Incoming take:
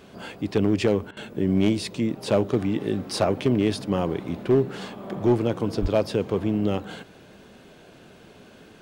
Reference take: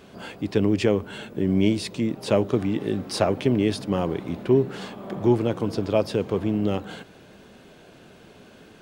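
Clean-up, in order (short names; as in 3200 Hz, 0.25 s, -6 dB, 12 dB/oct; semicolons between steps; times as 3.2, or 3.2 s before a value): clip repair -12.5 dBFS; 5.81–5.93 HPF 140 Hz 24 dB/oct; interpolate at 1.11, 57 ms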